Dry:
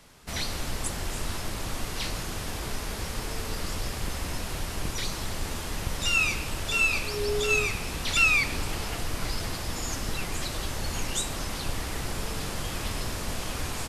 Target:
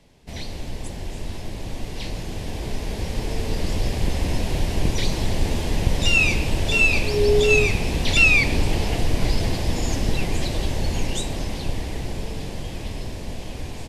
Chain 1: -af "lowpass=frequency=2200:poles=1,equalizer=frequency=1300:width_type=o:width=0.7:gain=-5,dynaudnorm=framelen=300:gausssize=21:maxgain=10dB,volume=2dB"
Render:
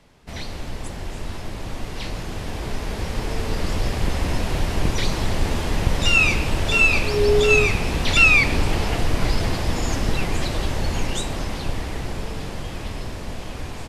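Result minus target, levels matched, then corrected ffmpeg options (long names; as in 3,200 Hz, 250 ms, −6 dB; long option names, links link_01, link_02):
1,000 Hz band +3.0 dB
-af "lowpass=frequency=2200:poles=1,equalizer=frequency=1300:width_type=o:width=0.7:gain=-16,dynaudnorm=framelen=300:gausssize=21:maxgain=10dB,volume=2dB"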